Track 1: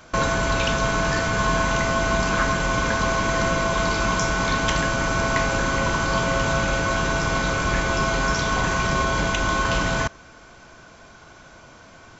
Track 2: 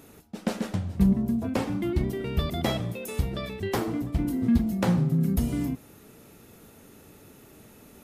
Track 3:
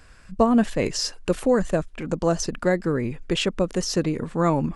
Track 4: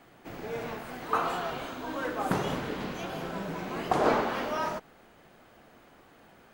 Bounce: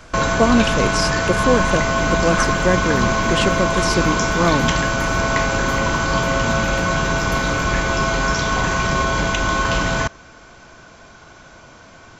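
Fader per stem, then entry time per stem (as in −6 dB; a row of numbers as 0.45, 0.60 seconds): +3.0, −6.0, +2.5, −13.0 decibels; 0.00, 1.95, 0.00, 1.25 seconds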